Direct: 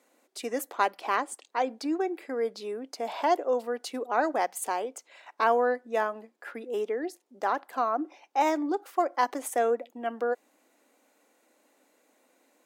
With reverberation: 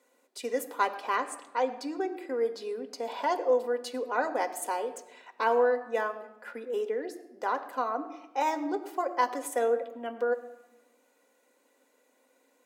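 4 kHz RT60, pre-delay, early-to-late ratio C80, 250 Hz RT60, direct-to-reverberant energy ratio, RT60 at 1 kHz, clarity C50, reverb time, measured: 0.70 s, 4 ms, 14.0 dB, 1.3 s, 6.0 dB, 1.0 s, 13.0 dB, 1.0 s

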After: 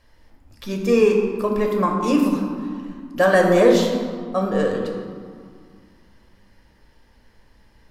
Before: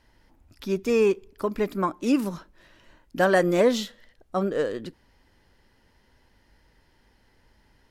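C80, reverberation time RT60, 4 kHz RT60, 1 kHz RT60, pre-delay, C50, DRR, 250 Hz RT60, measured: 4.5 dB, 2.1 s, 1.0 s, 2.2 s, 4 ms, 3.5 dB, 0.5 dB, 2.7 s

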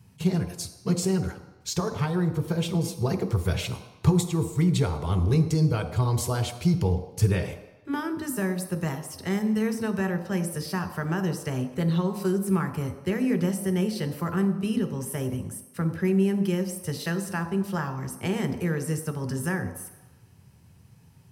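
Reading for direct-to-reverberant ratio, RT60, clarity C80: 5.0 dB, 1.0 s, 11.0 dB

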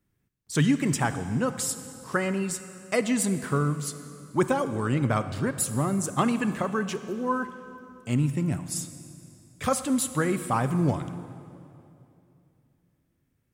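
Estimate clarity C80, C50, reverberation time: 12.0 dB, 11.5 dB, 2.8 s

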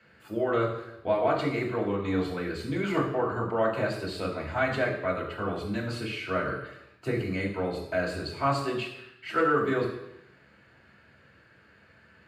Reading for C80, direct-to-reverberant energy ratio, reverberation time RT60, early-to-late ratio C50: 8.5 dB, -3.0 dB, 0.85 s, 6.5 dB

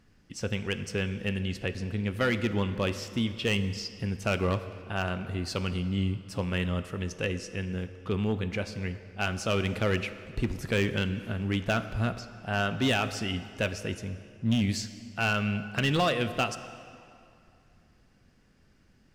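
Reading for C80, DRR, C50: 12.5 dB, 11.0 dB, 12.0 dB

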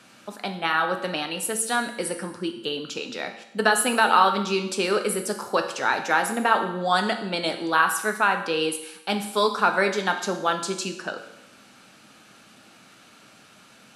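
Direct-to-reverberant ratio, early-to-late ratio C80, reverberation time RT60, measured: 5.0 dB, 11.5 dB, 0.85 s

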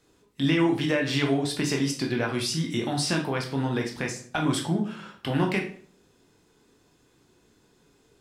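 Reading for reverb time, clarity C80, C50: 0.50 s, 13.0 dB, 8.5 dB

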